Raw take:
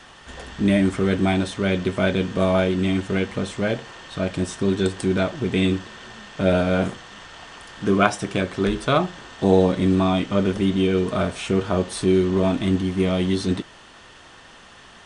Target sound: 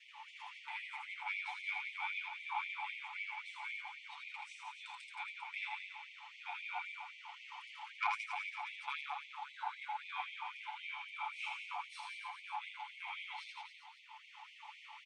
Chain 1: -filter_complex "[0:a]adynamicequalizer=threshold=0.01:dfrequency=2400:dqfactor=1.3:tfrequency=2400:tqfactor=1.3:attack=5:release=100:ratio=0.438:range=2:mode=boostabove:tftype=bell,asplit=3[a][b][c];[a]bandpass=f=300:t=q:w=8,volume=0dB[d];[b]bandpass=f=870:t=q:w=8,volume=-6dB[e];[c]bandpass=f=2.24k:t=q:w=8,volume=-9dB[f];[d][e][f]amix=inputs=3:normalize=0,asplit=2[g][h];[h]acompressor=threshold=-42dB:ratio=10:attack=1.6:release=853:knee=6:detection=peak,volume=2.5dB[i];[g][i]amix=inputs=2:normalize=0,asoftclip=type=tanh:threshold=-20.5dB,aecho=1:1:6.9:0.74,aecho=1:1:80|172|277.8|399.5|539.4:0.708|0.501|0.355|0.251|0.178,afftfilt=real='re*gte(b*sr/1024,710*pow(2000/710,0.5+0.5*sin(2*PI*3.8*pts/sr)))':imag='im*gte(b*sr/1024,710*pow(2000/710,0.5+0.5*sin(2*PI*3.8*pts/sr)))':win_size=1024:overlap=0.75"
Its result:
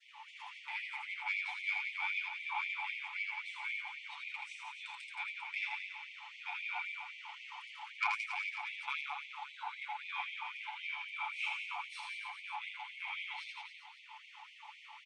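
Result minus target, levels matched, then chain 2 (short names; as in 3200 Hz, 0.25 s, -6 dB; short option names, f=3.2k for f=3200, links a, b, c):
compressor: peak gain reduction -7.5 dB; 500 Hz band -6.0 dB
-filter_complex "[0:a]adynamicequalizer=threshold=0.01:dfrequency=600:dqfactor=1.3:tfrequency=600:tqfactor=1.3:attack=5:release=100:ratio=0.438:range=2:mode=boostabove:tftype=bell,asplit=3[a][b][c];[a]bandpass=f=300:t=q:w=8,volume=0dB[d];[b]bandpass=f=870:t=q:w=8,volume=-6dB[e];[c]bandpass=f=2.24k:t=q:w=8,volume=-9dB[f];[d][e][f]amix=inputs=3:normalize=0,asplit=2[g][h];[h]acompressor=threshold=-49.5dB:ratio=10:attack=1.6:release=853:knee=6:detection=peak,volume=2.5dB[i];[g][i]amix=inputs=2:normalize=0,asoftclip=type=tanh:threshold=-20.5dB,aecho=1:1:6.9:0.74,aecho=1:1:80|172|277.8|399.5|539.4:0.708|0.501|0.355|0.251|0.178,afftfilt=real='re*gte(b*sr/1024,710*pow(2000/710,0.5+0.5*sin(2*PI*3.8*pts/sr)))':imag='im*gte(b*sr/1024,710*pow(2000/710,0.5+0.5*sin(2*PI*3.8*pts/sr)))':win_size=1024:overlap=0.75"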